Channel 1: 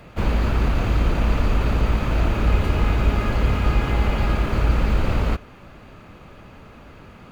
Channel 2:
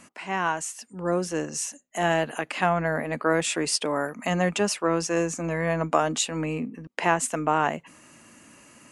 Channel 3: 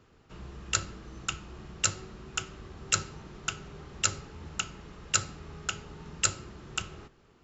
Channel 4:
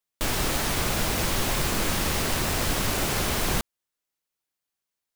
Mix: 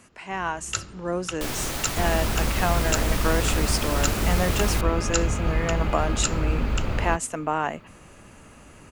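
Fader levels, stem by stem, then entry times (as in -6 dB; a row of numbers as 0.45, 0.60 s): -5.5, -2.5, -0.5, -4.0 dB; 1.80, 0.00, 0.00, 1.20 s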